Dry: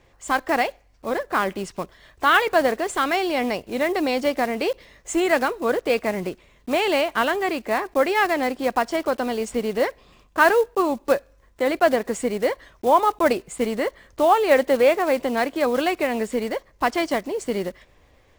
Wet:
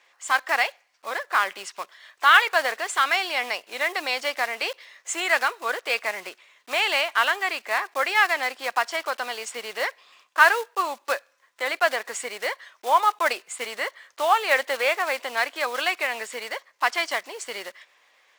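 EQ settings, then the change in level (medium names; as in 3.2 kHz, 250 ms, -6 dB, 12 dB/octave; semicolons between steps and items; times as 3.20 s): high-pass 1.2 kHz 12 dB/octave; treble shelf 9.4 kHz -7.5 dB; +4.5 dB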